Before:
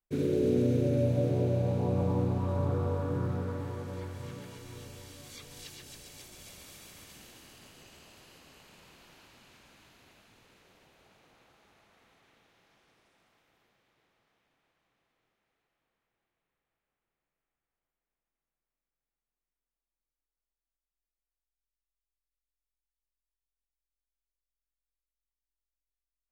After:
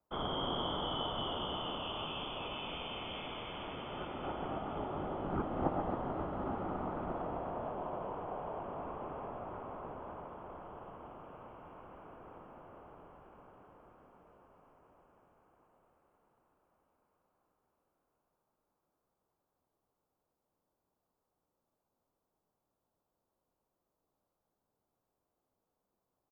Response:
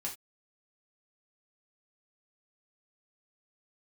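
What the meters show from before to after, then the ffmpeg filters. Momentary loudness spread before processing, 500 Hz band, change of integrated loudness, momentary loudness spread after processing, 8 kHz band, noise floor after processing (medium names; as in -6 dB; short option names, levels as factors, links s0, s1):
21 LU, -6.5 dB, -9.5 dB, 18 LU, under -25 dB, under -85 dBFS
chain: -filter_complex "[0:a]aderivative,acrossover=split=1000[s0][s1];[s1]aexciter=amount=12.2:drive=9.2:freq=2700[s2];[s0][s2]amix=inputs=2:normalize=0,asplit=9[s3][s4][s5][s6][s7][s8][s9][s10][s11];[s4]adelay=227,afreqshift=69,volume=0.473[s12];[s5]adelay=454,afreqshift=138,volume=0.275[s13];[s6]adelay=681,afreqshift=207,volume=0.158[s14];[s7]adelay=908,afreqshift=276,volume=0.0923[s15];[s8]adelay=1135,afreqshift=345,volume=0.0537[s16];[s9]adelay=1362,afreqshift=414,volume=0.0309[s17];[s10]adelay=1589,afreqshift=483,volume=0.018[s18];[s11]adelay=1816,afreqshift=552,volume=0.0105[s19];[s3][s12][s13][s14][s15][s16][s17][s18][s19]amix=inputs=9:normalize=0,asplit=2[s20][s21];[1:a]atrim=start_sample=2205,asetrate=22932,aresample=44100[s22];[s21][s22]afir=irnorm=-1:irlink=0,volume=0.126[s23];[s20][s23]amix=inputs=2:normalize=0,lowpass=f=3100:t=q:w=0.5098,lowpass=f=3100:t=q:w=0.6013,lowpass=f=3100:t=q:w=0.9,lowpass=f=3100:t=q:w=2.563,afreqshift=-3600,volume=2.51" -ar 44100 -c:a nellymoser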